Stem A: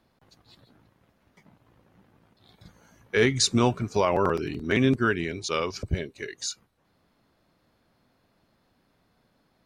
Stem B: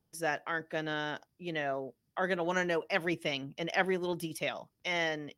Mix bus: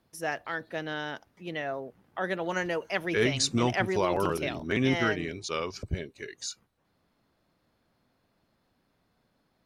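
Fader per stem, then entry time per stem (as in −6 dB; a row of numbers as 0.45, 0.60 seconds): −4.5, +0.5 decibels; 0.00, 0.00 seconds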